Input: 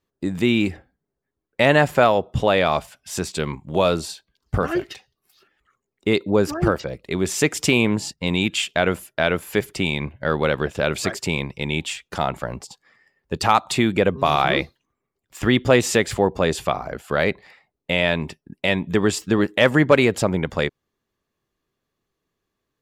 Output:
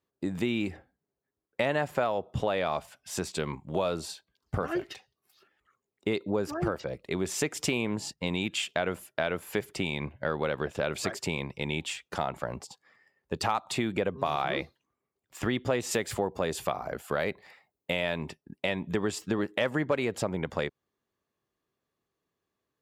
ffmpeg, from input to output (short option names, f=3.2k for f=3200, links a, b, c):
-filter_complex "[0:a]asettb=1/sr,asplit=3[a][b][c];[a]atrim=end=15.914[d];[b]atrim=start=15.91:end=18.21,asetpts=PTS-STARTPTS,afade=t=in:d=0.004:c=qsin,afade=t=out:st=2.296:d=0.004:c=qsin,highshelf=f=10k:g=11.5[e];[c]atrim=start=18.206[f];[d][e]acrossfade=d=0.004:c1=hsin:c2=qsin[g];[g][f]acrossfade=d=0.004:c1=qsin:c2=hsin,highpass=60,equalizer=f=730:w=0.62:g=3.5,acompressor=threshold=-20dB:ratio=3,volume=-6.5dB"